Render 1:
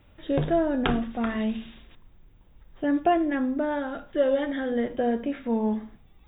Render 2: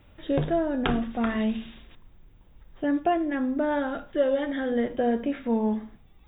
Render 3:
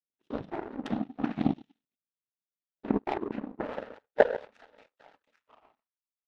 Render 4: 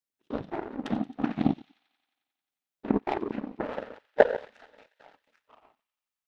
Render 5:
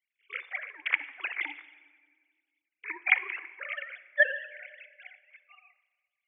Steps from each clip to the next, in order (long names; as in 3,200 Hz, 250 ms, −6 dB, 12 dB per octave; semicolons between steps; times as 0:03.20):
speech leveller 0.5 s
high-pass filter sweep 200 Hz → 1,100 Hz, 0:02.83–0:05.03; cochlear-implant simulation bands 12; power curve on the samples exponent 2
delay with a high-pass on its return 89 ms, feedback 72%, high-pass 2,600 Hz, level −17 dB; level +2 dB
three sine waves on the formant tracks; high-pass with resonance 2,200 Hz, resonance Q 9; rectangular room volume 2,100 cubic metres, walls mixed, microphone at 0.4 metres; level +7.5 dB